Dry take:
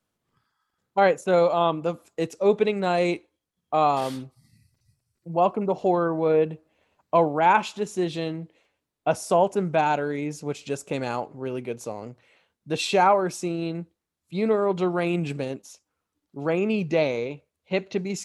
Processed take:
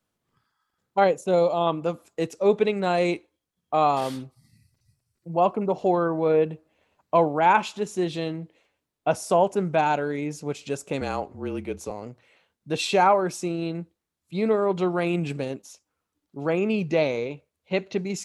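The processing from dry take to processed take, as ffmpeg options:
-filter_complex "[0:a]asettb=1/sr,asplit=3[a][b][c];[a]atrim=end=1.044[d];[b]atrim=start=1.04:end=1.67,asetpts=PTS-STARTPTS,afade=t=in:d=0.004:c=qsin,afade=t=out:st=0.626:d=0.004:c=qsin,equalizer=f=1.6k:t=o:w=1.1:g=-10[e];[c]atrim=start=1.666[f];[d][e]acrossfade=d=0.004:c1=hsin:c2=qsin[g];[g][f]acrossfade=d=0.004:c1=qsin:c2=hsin,asettb=1/sr,asplit=3[h][i][j];[h]atrim=end=11.014[k];[i]atrim=start=11.01:end=11.91,asetpts=PTS-STARTPTS,afade=t=in:d=0.004:c=qsin,afade=t=out:st=0.896:d=0.004:c=qsin,afreqshift=-37[l];[j]atrim=start=11.906[m];[k][l]acrossfade=d=0.004:c1=hsin:c2=qsin[n];[n][m]acrossfade=d=0.004:c1=qsin:c2=hsin"

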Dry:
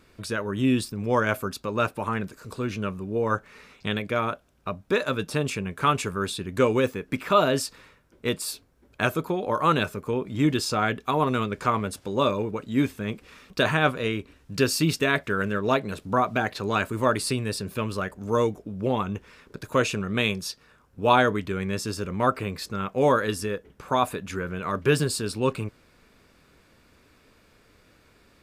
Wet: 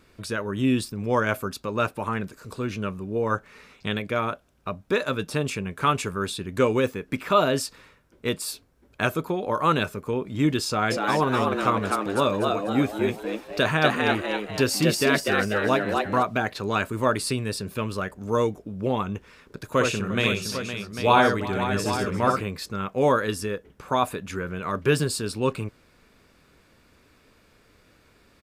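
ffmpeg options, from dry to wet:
-filter_complex "[0:a]asplit=3[a][b][c];[a]afade=t=out:st=10.9:d=0.02[d];[b]asplit=6[e][f][g][h][i][j];[f]adelay=246,afreqshift=100,volume=-3dB[k];[g]adelay=492,afreqshift=200,volume=-10.7dB[l];[h]adelay=738,afreqshift=300,volume=-18.5dB[m];[i]adelay=984,afreqshift=400,volume=-26.2dB[n];[j]adelay=1230,afreqshift=500,volume=-34dB[o];[e][k][l][m][n][o]amix=inputs=6:normalize=0,afade=t=in:st=10.9:d=0.02,afade=t=out:st=16.22:d=0.02[p];[c]afade=t=in:st=16.22:d=0.02[q];[d][p][q]amix=inputs=3:normalize=0,asettb=1/sr,asplit=3[r][s][t];[r]atrim=end=19.704[u];[s]atrim=start=19.7:end=22.41,asetpts=PTS-STARTPTS,afade=t=in:d=0.004:c=qsin,afade=t=out:st=2.706:d=0.004:c=qsin,aecho=1:1:60|349|513|798:0.596|0.158|0.335|0.316,atrim=end_sample=119511[v];[t]atrim=start=22.406[w];[u][v]acrossfade=d=0.004:c1=hsin:c2=qsin[x];[x][w]acrossfade=d=0.004:c1=qsin:c2=hsin"

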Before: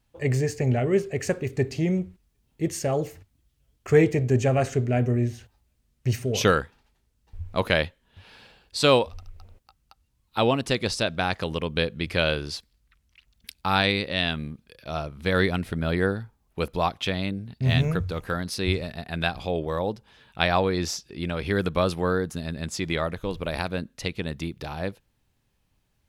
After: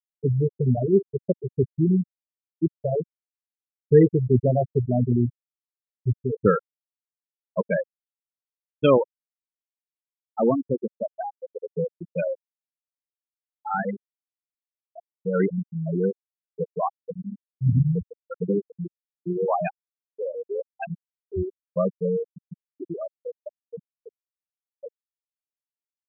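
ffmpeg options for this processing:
-filter_complex "[0:a]asplit=3[a][b][c];[a]atrim=end=18.372[d];[b]atrim=start=18.368:end=21.732,asetpts=PTS-STARTPTS,areverse[e];[c]atrim=start=21.728[f];[d][e]acrossfade=d=0.004:c1=hsin:c2=hsin[g];[g][f]acrossfade=d=0.004:c1=hsin:c2=hsin,highpass=120,afftfilt=real='re*gte(hypot(re,im),0.316)':imag='im*gte(hypot(re,im),0.316)':win_size=1024:overlap=0.75,equalizer=f=180:t=o:w=2.6:g=5.5"

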